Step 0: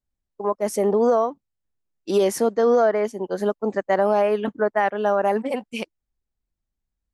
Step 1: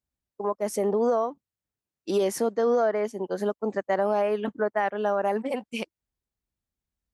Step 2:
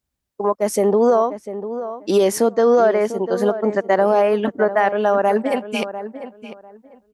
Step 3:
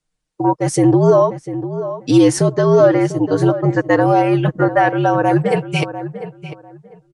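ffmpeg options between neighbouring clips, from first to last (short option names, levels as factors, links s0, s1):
-filter_complex "[0:a]highpass=55,asplit=2[s0][s1];[s1]acompressor=threshold=0.0447:ratio=6,volume=1.06[s2];[s0][s2]amix=inputs=2:normalize=0,volume=0.422"
-filter_complex "[0:a]asplit=2[s0][s1];[s1]adelay=697,lowpass=f=1900:p=1,volume=0.266,asplit=2[s2][s3];[s3]adelay=697,lowpass=f=1900:p=1,volume=0.21,asplit=2[s4][s5];[s5]adelay=697,lowpass=f=1900:p=1,volume=0.21[s6];[s0][s2][s4][s6]amix=inputs=4:normalize=0,volume=2.66"
-af "afreqshift=-71,aresample=22050,aresample=44100,aecho=1:1:6.5:0.57,volume=1.33"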